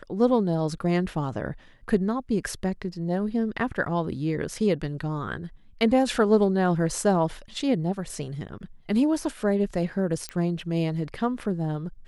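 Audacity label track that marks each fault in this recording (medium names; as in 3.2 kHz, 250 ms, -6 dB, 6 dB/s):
10.290000	10.290000	pop -17 dBFS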